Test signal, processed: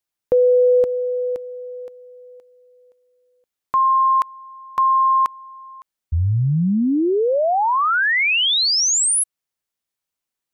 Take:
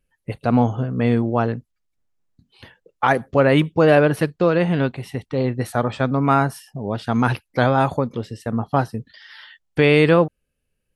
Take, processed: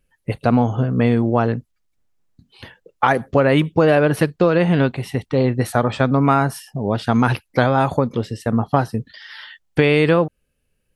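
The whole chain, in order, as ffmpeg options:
ffmpeg -i in.wav -af "acompressor=threshold=-16dB:ratio=6,volume=5dB" out.wav

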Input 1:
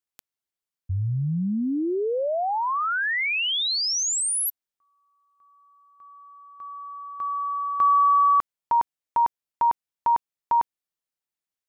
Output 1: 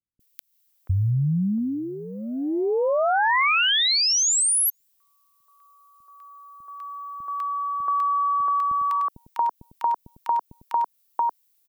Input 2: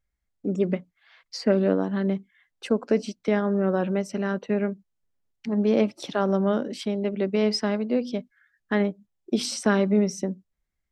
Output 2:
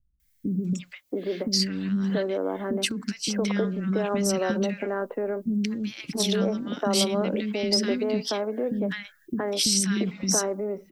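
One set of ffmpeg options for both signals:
ffmpeg -i in.wav -filter_complex "[0:a]aemphasis=mode=production:type=75kf,acrossover=split=5500[link_01][link_02];[link_02]acompressor=threshold=-22dB:ratio=4:attack=1:release=60[link_03];[link_01][link_03]amix=inputs=2:normalize=0,equalizer=frequency=8000:width=1.3:gain=-3,alimiter=limit=-20.5dB:level=0:latency=1:release=184,acompressor=threshold=-29dB:ratio=6:attack=17:release=103:knee=1,acrossover=split=280|1500[link_04][link_05][link_06];[link_06]adelay=200[link_07];[link_05]adelay=680[link_08];[link_04][link_08][link_07]amix=inputs=3:normalize=0,volume=9dB" out.wav

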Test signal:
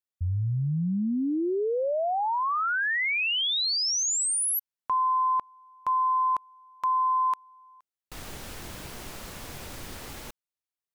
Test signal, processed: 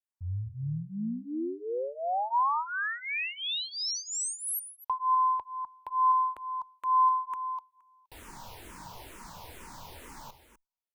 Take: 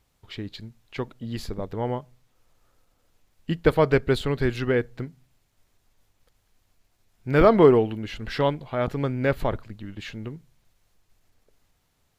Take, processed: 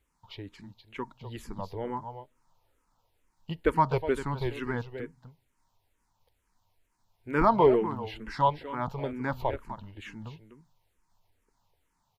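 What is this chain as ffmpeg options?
ffmpeg -i in.wav -filter_complex "[0:a]equalizer=frequency=940:width=4.3:gain=13.5,aecho=1:1:250:0.282,asplit=2[link_01][link_02];[link_02]afreqshift=-2.2[link_03];[link_01][link_03]amix=inputs=2:normalize=1,volume=-5dB" out.wav

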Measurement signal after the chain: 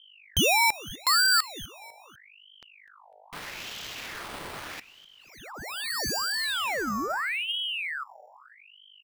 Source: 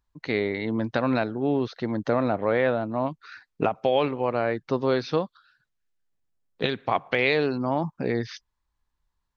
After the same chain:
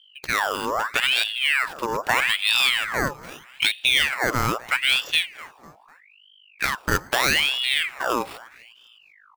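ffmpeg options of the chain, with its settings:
ffmpeg -i in.wav -filter_complex "[0:a]lowpass=frequency=5000:width=0.5412,lowpass=frequency=5000:width=1.3066,acrossover=split=3100[link_01][link_02];[link_02]acompressor=threshold=-43dB:ratio=4:attack=1:release=60[link_03];[link_01][link_03]amix=inputs=2:normalize=0,highpass=frequency=99:poles=1,bandreject=frequency=184.8:width_type=h:width=4,bandreject=frequency=369.6:width_type=h:width=4,bandreject=frequency=554.4:width_type=h:width=4,acrusher=samples=7:mix=1:aa=0.000001,aeval=exprs='val(0)+0.00158*(sin(2*PI*50*n/s)+sin(2*PI*2*50*n/s)/2+sin(2*PI*3*50*n/s)/3+sin(2*PI*4*50*n/s)/4+sin(2*PI*5*50*n/s)/5)':channel_layout=same,asplit=2[link_04][link_05];[link_05]aecho=0:1:250|500|750:0.1|0.045|0.0202[link_06];[link_04][link_06]amix=inputs=2:normalize=0,aeval=exprs='val(0)*sin(2*PI*1900*n/s+1900*0.65/0.79*sin(2*PI*0.79*n/s))':channel_layout=same,volume=5.5dB" out.wav

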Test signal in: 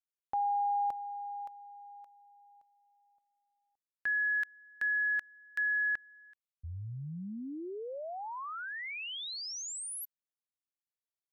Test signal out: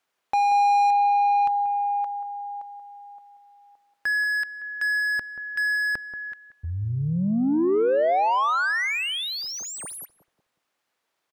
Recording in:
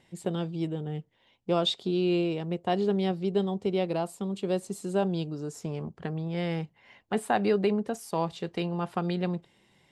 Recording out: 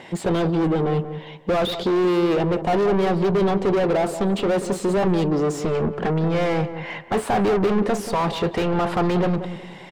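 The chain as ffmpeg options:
ffmpeg -i in.wav -filter_complex "[0:a]asplit=2[link_01][link_02];[link_02]highpass=frequency=720:poles=1,volume=36dB,asoftclip=type=tanh:threshold=-12dB[link_03];[link_01][link_03]amix=inputs=2:normalize=0,lowpass=frequency=1100:poles=1,volume=-6dB,asplit=2[link_04][link_05];[link_05]adelay=183,lowpass=frequency=1100:poles=1,volume=-9.5dB,asplit=2[link_06][link_07];[link_07]adelay=183,lowpass=frequency=1100:poles=1,volume=0.35,asplit=2[link_08][link_09];[link_09]adelay=183,lowpass=frequency=1100:poles=1,volume=0.35,asplit=2[link_10][link_11];[link_11]adelay=183,lowpass=frequency=1100:poles=1,volume=0.35[link_12];[link_04][link_06][link_08][link_10][link_12]amix=inputs=5:normalize=0" out.wav

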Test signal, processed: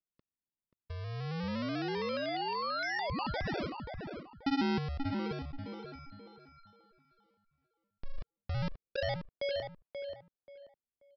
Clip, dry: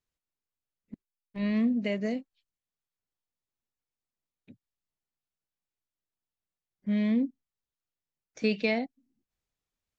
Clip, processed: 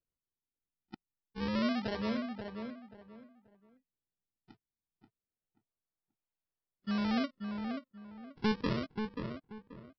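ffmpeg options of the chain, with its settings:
ffmpeg -i in.wav -filter_complex "[0:a]acrossover=split=170|3000[link_01][link_02][link_03];[link_01]acompressor=threshold=-34dB:ratio=6[link_04];[link_04][link_02][link_03]amix=inputs=3:normalize=0,aresample=11025,acrusher=samples=11:mix=1:aa=0.000001:lfo=1:lforange=17.6:lforate=0.28,aresample=44100,asplit=2[link_05][link_06];[link_06]adelay=533,lowpass=frequency=2300:poles=1,volume=-6dB,asplit=2[link_07][link_08];[link_08]adelay=533,lowpass=frequency=2300:poles=1,volume=0.27,asplit=2[link_09][link_10];[link_10]adelay=533,lowpass=frequency=2300:poles=1,volume=0.27[link_11];[link_05][link_07][link_09][link_11]amix=inputs=4:normalize=0,volume=-5.5dB" out.wav

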